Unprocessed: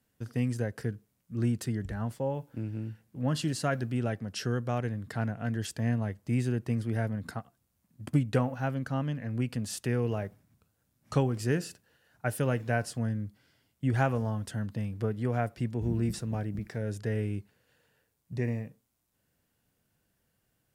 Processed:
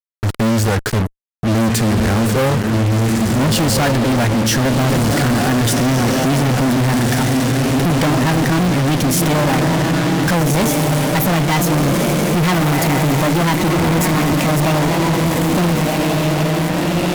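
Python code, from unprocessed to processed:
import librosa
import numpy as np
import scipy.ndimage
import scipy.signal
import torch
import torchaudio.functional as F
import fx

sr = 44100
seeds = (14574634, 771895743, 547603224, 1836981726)

p1 = fx.speed_glide(x, sr, from_pct=89, to_pct=153)
p2 = fx.dynamic_eq(p1, sr, hz=240.0, q=2.8, threshold_db=-41.0, ratio=4.0, max_db=4)
p3 = fx.rider(p2, sr, range_db=4, speed_s=0.5)
p4 = p2 + F.gain(torch.from_numpy(p3), 1.0).numpy()
p5 = fx.echo_diffused(p4, sr, ms=1512, feedback_pct=43, wet_db=-6.5)
y = fx.fuzz(p5, sr, gain_db=43.0, gate_db=-38.0)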